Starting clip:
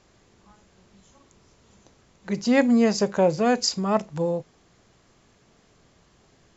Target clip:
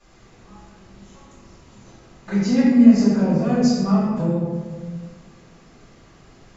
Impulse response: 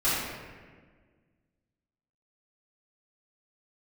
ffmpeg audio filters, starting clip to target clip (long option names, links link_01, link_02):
-filter_complex "[0:a]acrossover=split=250[link_01][link_02];[link_02]acompressor=threshold=-35dB:ratio=5[link_03];[link_01][link_03]amix=inputs=2:normalize=0[link_04];[1:a]atrim=start_sample=2205[link_05];[link_04][link_05]afir=irnorm=-1:irlink=0,volume=-4dB"